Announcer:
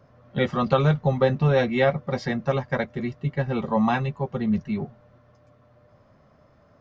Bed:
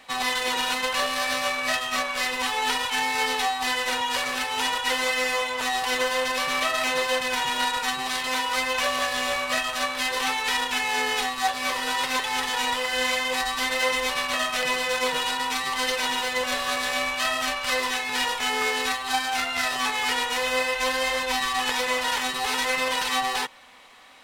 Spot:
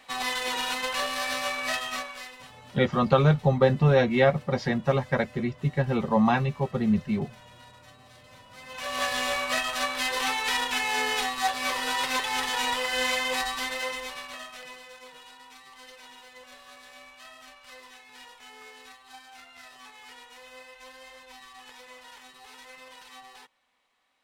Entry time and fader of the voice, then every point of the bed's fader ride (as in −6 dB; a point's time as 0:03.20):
2.40 s, 0.0 dB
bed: 0:01.87 −4 dB
0:02.64 −27.5 dB
0:08.48 −27.5 dB
0:09.02 −2 dB
0:13.36 −2 dB
0:15.01 −23 dB